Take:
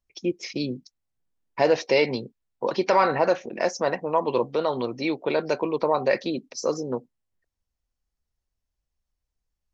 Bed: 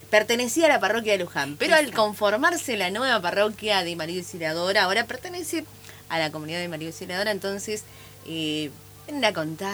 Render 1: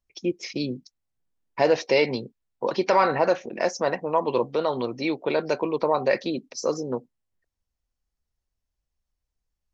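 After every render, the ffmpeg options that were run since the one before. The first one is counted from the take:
-af anull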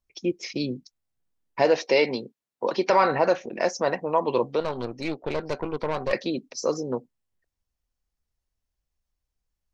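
-filter_complex "[0:a]asettb=1/sr,asplit=3[a][b][c];[a]atrim=end=1.654[d];[b]atrim=start=1.65:end=2.9,asetpts=PTS-STARTPTS,afade=t=in:d=0.004:c=qsin,afade=t=out:st=1.246:d=0.004:c=qsin,highpass=180[e];[c]atrim=start=2.896[f];[d][e]acrossfade=d=0.004:c1=hsin:c2=qsin[g];[g][f]acrossfade=d=0.004:c1=qsin:c2=hsin,asettb=1/sr,asplit=3[h][i][j];[h]atrim=end=4.604[k];[i]atrim=start=4.6:end=6.13,asetpts=PTS-STARTPTS,afade=t=in:d=0.004:c=qsin,afade=t=out:st=1.526:d=0.004:c=qsin,aeval=exprs='(tanh(11.2*val(0)+0.75)-tanh(0.75))/11.2':c=same[l];[j]atrim=start=6.126[m];[k][l]acrossfade=d=0.004:c1=hsin:c2=qsin[n];[n][m]acrossfade=d=0.004:c1=qsin:c2=hsin"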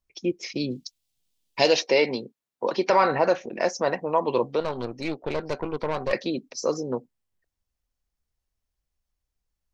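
-filter_complex "[0:a]asplit=3[a][b][c];[a]afade=t=out:st=0.7:d=0.02[d];[b]highshelf=f=2.3k:t=q:w=1.5:g=11,afade=t=in:st=0.7:d=0.02,afade=t=out:st=1.79:d=0.02[e];[c]afade=t=in:st=1.79:d=0.02[f];[d][e][f]amix=inputs=3:normalize=0"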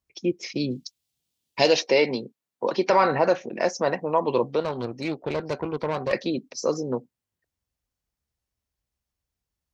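-af "highpass=72,lowshelf=f=230:g=4"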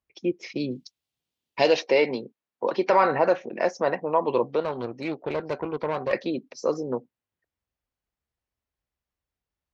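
-af "bass=f=250:g=-5,treble=f=4k:g=-11"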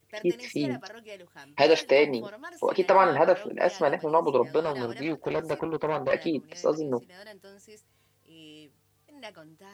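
-filter_complex "[1:a]volume=-21.5dB[a];[0:a][a]amix=inputs=2:normalize=0"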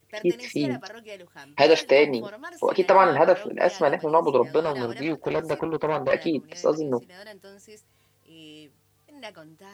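-af "volume=3dB"

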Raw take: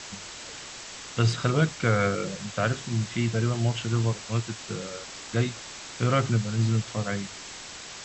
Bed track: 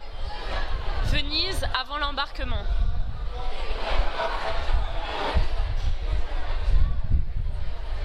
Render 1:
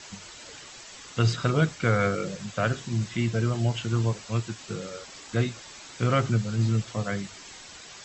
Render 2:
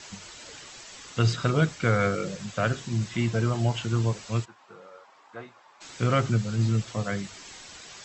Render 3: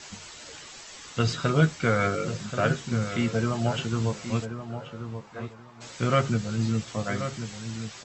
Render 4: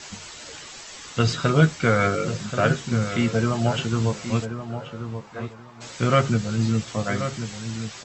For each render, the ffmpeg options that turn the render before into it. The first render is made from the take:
-af "afftdn=nr=8:nf=-42"
-filter_complex "[0:a]asettb=1/sr,asplit=3[a][b][c];[a]atrim=end=3.144[d];[b]atrim=start=3.14:end=3.85,asetpts=PTS-STARTPTS,afade=t=in:d=0.004:c=qsin,afade=t=out:st=0.706:d=0.004:c=qsin,equalizer=f=900:t=o:w=0.98:g=5[e];[c]atrim=start=3.846[f];[d][e]acrossfade=d=0.004:c1=hsin:c2=qsin[g];[g][f]acrossfade=d=0.004:c1=qsin:c2=hsin,asplit=3[h][i][j];[h]afade=t=out:st=4.44:d=0.02[k];[i]bandpass=f=940:t=q:w=2.4,afade=t=in:st=4.44:d=0.02,afade=t=out:st=5.8:d=0.02[l];[j]afade=t=in:st=5.8:d=0.02[m];[k][l][m]amix=inputs=3:normalize=0"
-filter_complex "[0:a]asplit=2[a][b];[b]adelay=13,volume=-8dB[c];[a][c]amix=inputs=2:normalize=0,asplit=2[d][e];[e]adelay=1081,lowpass=f=1.8k:p=1,volume=-9dB,asplit=2[f][g];[g]adelay=1081,lowpass=f=1.8k:p=1,volume=0.21,asplit=2[h][i];[i]adelay=1081,lowpass=f=1.8k:p=1,volume=0.21[j];[d][f][h][j]amix=inputs=4:normalize=0"
-af "volume=4dB"

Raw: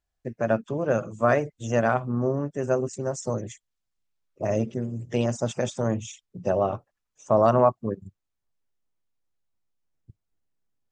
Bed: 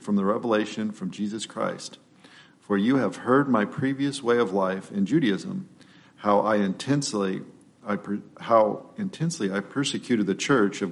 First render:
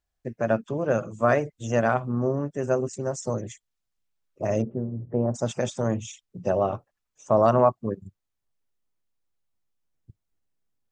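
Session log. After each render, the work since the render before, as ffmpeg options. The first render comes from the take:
-filter_complex "[0:a]asplit=3[a][b][c];[a]afade=t=out:st=4.61:d=0.02[d];[b]lowpass=f=1.1k:w=0.5412,lowpass=f=1.1k:w=1.3066,afade=t=in:st=4.61:d=0.02,afade=t=out:st=5.34:d=0.02[e];[c]afade=t=in:st=5.34:d=0.02[f];[d][e][f]amix=inputs=3:normalize=0"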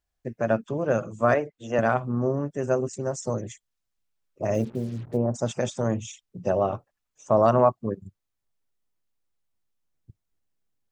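-filter_complex "[0:a]asettb=1/sr,asplit=3[a][b][c];[a]atrim=end=1.344[d];[b]atrim=start=1.34:end=1.79,asetpts=PTS-STARTPTS,afade=t=in:d=0.004:c=qsin,afade=t=out:st=0.446:d=0.004:c=qsin,acrossover=split=210 4000:gain=0.251 1 0.251[e][f][g];[e][f][g]amix=inputs=3:normalize=0[h];[c]atrim=start=1.786[i];[d][h]acrossfade=d=0.004:c1=hsin:c2=qsin[j];[j][i]acrossfade=d=0.004:c1=qsin:c2=hsin,asplit=3[k][l][m];[k]afade=t=out:st=4.53:d=0.02[n];[l]acrusher=bits=7:mix=0:aa=0.5,afade=t=in:st=4.53:d=0.02,afade=t=out:st=5.16:d=0.02[o];[m]afade=t=in:st=5.16:d=0.02[p];[n][o][p]amix=inputs=3:normalize=0"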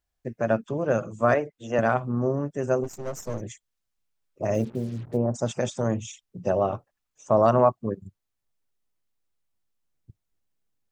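-filter_complex "[0:a]asplit=3[a][b][c];[a]afade=t=out:st=2.83:d=0.02[d];[b]aeval=exprs='if(lt(val(0),0),0.251*val(0),val(0))':c=same,afade=t=in:st=2.83:d=0.02,afade=t=out:st=3.4:d=0.02[e];[c]afade=t=in:st=3.4:d=0.02[f];[d][e][f]amix=inputs=3:normalize=0"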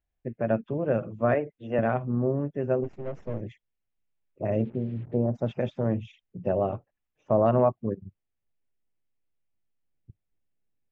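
-af "lowpass=f=2.7k:w=0.5412,lowpass=f=2.7k:w=1.3066,equalizer=f=1.2k:w=1:g=-8"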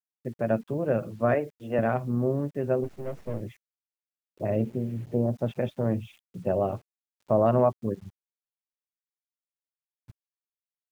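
-af "acrusher=bits=9:mix=0:aa=0.000001"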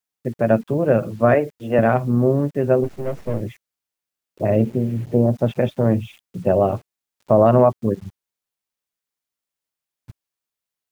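-af "volume=9dB,alimiter=limit=-3dB:level=0:latency=1"

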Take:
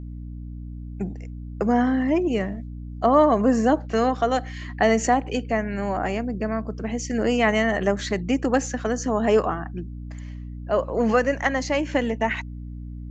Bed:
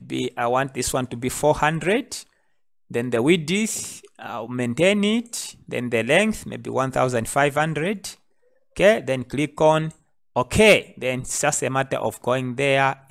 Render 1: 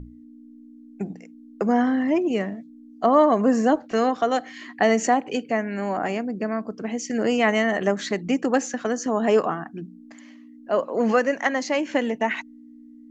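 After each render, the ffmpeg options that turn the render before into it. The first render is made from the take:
-af "bandreject=f=60:t=h:w=6,bandreject=f=120:t=h:w=6,bandreject=f=180:t=h:w=6"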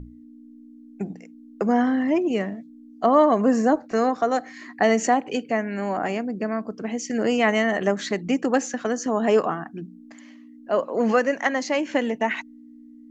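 -filter_complex "[0:a]asettb=1/sr,asplit=3[a][b][c];[a]atrim=end=3.624[d];[b]atrim=start=3.62:end=4.84,asetpts=PTS-STARTPTS,afade=t=in:d=0.004:c=qsin,afade=t=out:st=1.216:d=0.004:c=qsin,equalizer=f=3.1k:w=3.5:g=-11.5[e];[c]atrim=start=4.836[f];[d][e]acrossfade=d=0.004:c1=hsin:c2=qsin[g];[g][f]acrossfade=d=0.004:c1=qsin:c2=hsin"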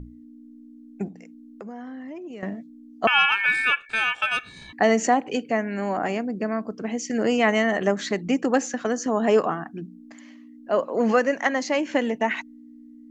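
-filter_complex "[0:a]asettb=1/sr,asplit=3[a][b][c];[a]atrim=end=1.084[d];[b]atrim=start=1.08:end=2.43,asetpts=PTS-STARTPTS,afade=t=in:d=0.004:c=qsin,afade=t=out:st=1.346:d=0.004:c=qsin,acompressor=threshold=-40dB:ratio=3:attack=3.2:release=140:knee=1:detection=peak[e];[c]atrim=start=2.426[f];[d][e]acrossfade=d=0.004:c1=hsin:c2=qsin[g];[g][f]acrossfade=d=0.004:c1=qsin:c2=hsin,asettb=1/sr,asplit=3[h][i][j];[h]atrim=end=3.074[k];[i]atrim=start=3.07:end=4.73,asetpts=PTS-STARTPTS,afade=t=in:d=0.004:c=qsin,afade=t=out:st=1.656:d=0.004:c=qsin,aeval=exprs='val(0)*sin(2*PI*2000*n/s)':c=same[l];[j]atrim=start=4.726[m];[k][l]acrossfade=d=0.004:c1=hsin:c2=qsin[n];[n][m]acrossfade=d=0.004:c1=qsin:c2=hsin"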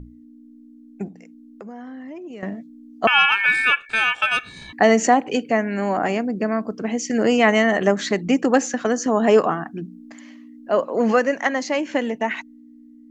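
-af "dynaudnorm=f=420:g=13:m=7.5dB"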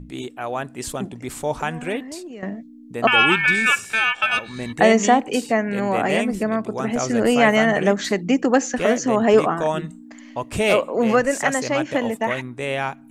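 -filter_complex "[1:a]volume=-6dB[a];[0:a][a]amix=inputs=2:normalize=0"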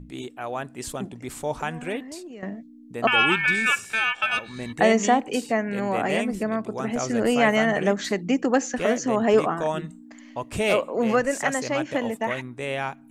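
-af "volume=-4dB"

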